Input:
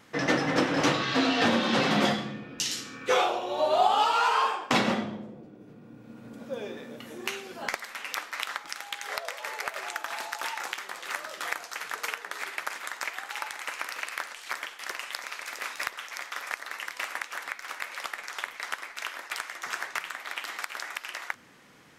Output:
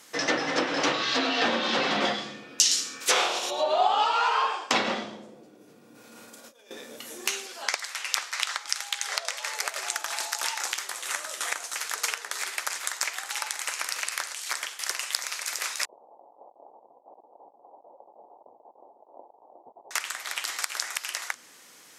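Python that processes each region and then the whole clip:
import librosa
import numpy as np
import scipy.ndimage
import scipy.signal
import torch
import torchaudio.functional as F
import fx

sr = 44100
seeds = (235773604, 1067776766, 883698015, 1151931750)

y = fx.spec_flatten(x, sr, power=0.52, at=(3.0, 3.49), fade=0.02)
y = fx.peak_eq(y, sr, hz=68.0, db=-11.5, octaves=2.0, at=(3.0, 3.49), fade=0.02)
y = fx.chain(y, sr, fx.peak_eq(hz=200.0, db=-6.0, octaves=2.6),
    fx.over_compress(threshold_db=-51.0, ratio=-1.0),
    fx.doubler(ms=31.0, db=-9.0), at=(5.95, 6.71))
y = fx.chain(y, sr, fx.weighting(curve='A'),
    fx.doppler_dist(depth_ms=0.11), at=(7.46, 9.55))
y = fx.chain(y, sr, fx.cvsd(bps=64000),
    fx.peak_eq(hz=4800.0, db=-5.5, octaves=0.39), at=(10.94, 11.76))
y = fx.chain(y, sr, fx.over_compress(threshold_db=-39.0, ratio=-0.5),
    fx.steep_lowpass(hz=870.0, slope=72), at=(15.85, 19.91))
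y = fx.highpass(y, sr, hz=130.0, slope=6)
y = fx.env_lowpass_down(y, sr, base_hz=2900.0, full_db=-21.0)
y = fx.bass_treble(y, sr, bass_db=-10, treble_db=15)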